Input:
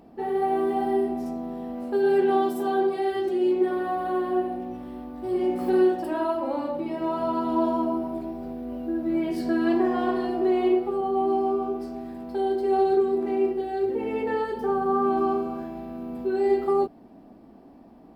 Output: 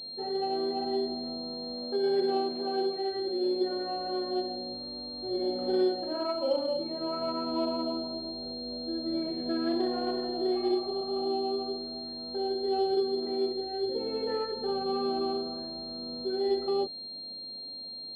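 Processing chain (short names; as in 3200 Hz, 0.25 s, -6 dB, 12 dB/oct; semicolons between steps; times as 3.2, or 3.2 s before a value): bell 1200 Hz -7.5 dB 0.46 oct; small resonant body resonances 540/1300 Hz, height 13 dB, ringing for 45 ms; spectral repair 10.58–11.26, 440–1600 Hz after; pulse-width modulation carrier 4200 Hz; gain -7.5 dB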